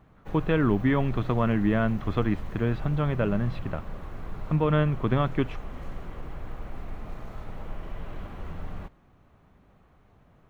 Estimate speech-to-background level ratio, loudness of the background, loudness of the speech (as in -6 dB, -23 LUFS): 14.5 dB, -41.0 LUFS, -26.5 LUFS